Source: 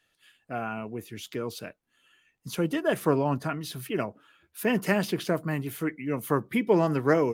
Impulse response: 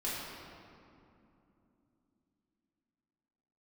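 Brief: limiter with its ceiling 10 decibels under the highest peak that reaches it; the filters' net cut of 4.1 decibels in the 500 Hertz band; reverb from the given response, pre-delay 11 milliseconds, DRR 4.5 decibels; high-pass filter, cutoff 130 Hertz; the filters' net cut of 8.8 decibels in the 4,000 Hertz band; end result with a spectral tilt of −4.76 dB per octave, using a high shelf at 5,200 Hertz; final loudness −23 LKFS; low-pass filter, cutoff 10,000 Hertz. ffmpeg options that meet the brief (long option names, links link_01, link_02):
-filter_complex "[0:a]highpass=130,lowpass=10000,equalizer=frequency=500:width_type=o:gain=-5,equalizer=frequency=4000:width_type=o:gain=-8.5,highshelf=frequency=5200:gain=-9,alimiter=limit=-21.5dB:level=0:latency=1,asplit=2[link_01][link_02];[1:a]atrim=start_sample=2205,adelay=11[link_03];[link_02][link_03]afir=irnorm=-1:irlink=0,volume=-9.5dB[link_04];[link_01][link_04]amix=inputs=2:normalize=0,volume=9.5dB"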